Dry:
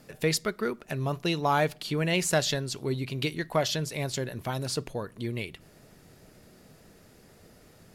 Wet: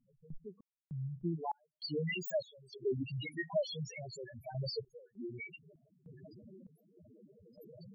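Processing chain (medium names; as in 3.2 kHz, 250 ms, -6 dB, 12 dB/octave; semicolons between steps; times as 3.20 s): tracing distortion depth 0.12 ms; tilt EQ -1.5 dB/octave, from 1.35 s +2.5 dB/octave; compression 3:1, threshold -45 dBFS, peak gain reduction 19 dB; loudest bins only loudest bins 2; random-step tremolo 3.3 Hz, depth 100%; trim +16.5 dB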